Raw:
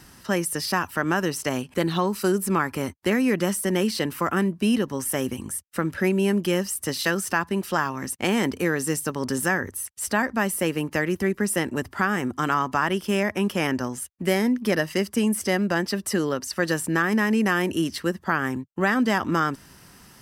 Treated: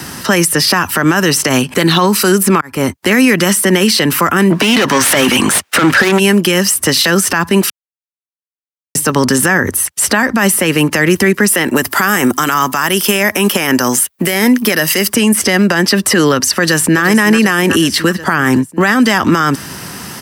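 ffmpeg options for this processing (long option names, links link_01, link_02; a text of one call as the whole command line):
ffmpeg -i in.wav -filter_complex "[0:a]asplit=3[link_01][link_02][link_03];[link_01]afade=type=out:start_time=4.5:duration=0.02[link_04];[link_02]asplit=2[link_05][link_06];[link_06]highpass=frequency=720:poles=1,volume=28dB,asoftclip=type=tanh:threshold=-9dB[link_07];[link_05][link_07]amix=inputs=2:normalize=0,lowpass=frequency=2400:poles=1,volume=-6dB,afade=type=in:start_time=4.5:duration=0.02,afade=type=out:start_time=6.18:duration=0.02[link_08];[link_03]afade=type=in:start_time=6.18:duration=0.02[link_09];[link_04][link_08][link_09]amix=inputs=3:normalize=0,asettb=1/sr,asplit=3[link_10][link_11][link_12];[link_10]atrim=end=11.484[link_13];[link_11]atrim=start=11.48:end=15.13,asetpts=PTS-STARTPTS,afade=type=in:duration=0.004:curve=qsin,afade=type=out:start_time=3.646:duration=0.004:curve=qsin,aemphasis=mode=production:type=bsi[link_14];[link_12]atrim=start=15.126[link_15];[link_13][link_14]acrossfade=duration=0.004:curve1=hsin:curve2=qsin[link_16];[link_16][link_15]acrossfade=duration=0.004:curve1=qsin:curve2=hsin,asplit=2[link_17][link_18];[link_18]afade=type=in:start_time=16.59:duration=0.01,afade=type=out:start_time=17.01:duration=0.01,aecho=0:1:370|740|1110|1480|1850|2220|2590:0.199526|0.129692|0.0842998|0.0547949|0.0356167|0.0231508|0.015048[link_19];[link_17][link_19]amix=inputs=2:normalize=0,asplit=4[link_20][link_21][link_22][link_23];[link_20]atrim=end=2.61,asetpts=PTS-STARTPTS,afade=type=out:start_time=2.606:duration=0.004:curve=hsin[link_24];[link_21]atrim=start=2.61:end=7.7,asetpts=PTS-STARTPTS,afade=type=in:duration=0.57,afade=type=out:start_time=5.086:duration=0.004:curve=hsin[link_25];[link_22]atrim=start=7.7:end=8.95,asetpts=PTS-STARTPTS,volume=0[link_26];[link_23]atrim=start=8.95,asetpts=PTS-STARTPTS,afade=type=in:duration=0.004:curve=hsin[link_27];[link_24][link_25][link_26][link_27]concat=n=4:v=0:a=1,highpass=100,acrossover=split=230|1200|4000[link_28][link_29][link_30][link_31];[link_28]acompressor=threshold=-37dB:ratio=4[link_32];[link_29]acompressor=threshold=-33dB:ratio=4[link_33];[link_30]acompressor=threshold=-29dB:ratio=4[link_34];[link_31]acompressor=threshold=-35dB:ratio=4[link_35];[link_32][link_33][link_34][link_35]amix=inputs=4:normalize=0,alimiter=level_in=24dB:limit=-1dB:release=50:level=0:latency=1,volume=-1dB" out.wav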